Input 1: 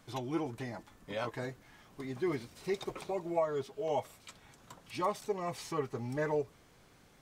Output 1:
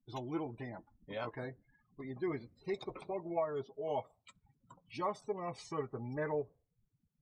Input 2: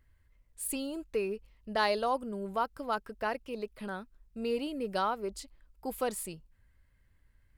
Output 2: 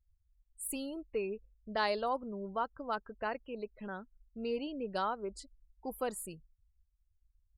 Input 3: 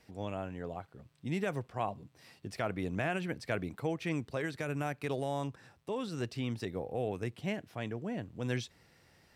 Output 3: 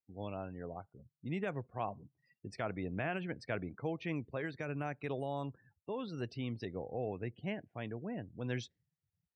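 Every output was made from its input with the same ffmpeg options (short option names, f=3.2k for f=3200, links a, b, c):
-af "afftdn=nr=36:nf=-49,volume=-3.5dB"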